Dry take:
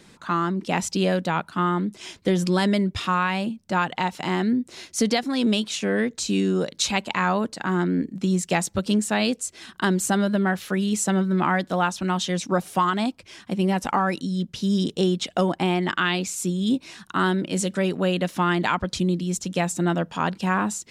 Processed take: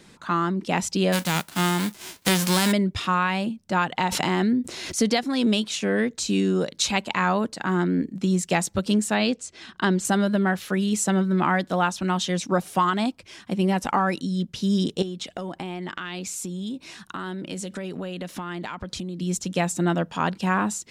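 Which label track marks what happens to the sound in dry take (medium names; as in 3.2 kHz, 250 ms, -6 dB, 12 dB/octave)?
1.120000	2.710000	formants flattened exponent 0.3
3.980000	4.970000	swell ahead of each attack at most 24 dB/s
9.150000	10.050000	low-pass 5.8 kHz
15.020000	19.210000	compression 12:1, threshold -28 dBFS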